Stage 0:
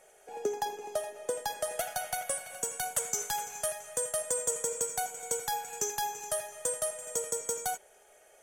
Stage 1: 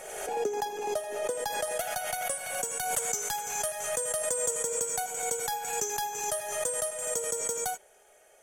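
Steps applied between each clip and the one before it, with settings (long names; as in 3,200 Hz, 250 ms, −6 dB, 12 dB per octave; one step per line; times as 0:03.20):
background raised ahead of every attack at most 39 dB per second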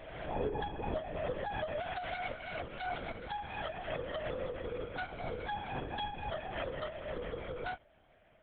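linear-prediction vocoder at 8 kHz whisper
level −4.5 dB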